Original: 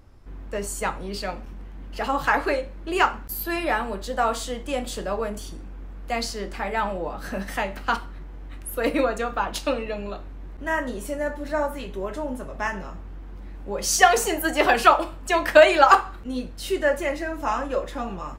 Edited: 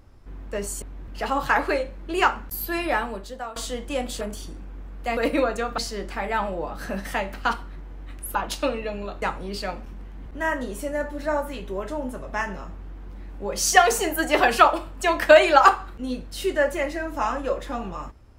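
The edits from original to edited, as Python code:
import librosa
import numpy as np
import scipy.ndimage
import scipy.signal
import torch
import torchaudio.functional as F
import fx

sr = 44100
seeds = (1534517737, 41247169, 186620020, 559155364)

y = fx.edit(x, sr, fx.swap(start_s=0.82, length_s=1.04, other_s=10.26, other_length_s=0.26),
    fx.fade_out_to(start_s=3.74, length_s=0.6, floor_db=-19.5),
    fx.cut(start_s=4.99, length_s=0.26),
    fx.move(start_s=8.78, length_s=0.61, to_s=6.21), tone=tone)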